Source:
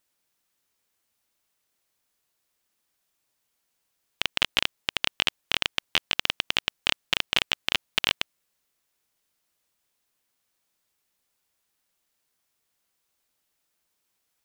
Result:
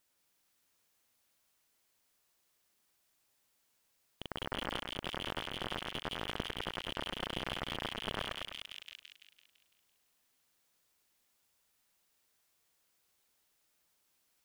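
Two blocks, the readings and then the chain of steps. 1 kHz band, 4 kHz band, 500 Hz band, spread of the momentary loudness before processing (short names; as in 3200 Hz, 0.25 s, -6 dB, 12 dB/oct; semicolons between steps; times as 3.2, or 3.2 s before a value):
-5.0 dB, -14.5 dB, -2.0 dB, 3 LU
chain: split-band echo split 1700 Hz, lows 0.101 s, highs 0.168 s, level -4 dB; slew limiter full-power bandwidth 66 Hz; gain -1 dB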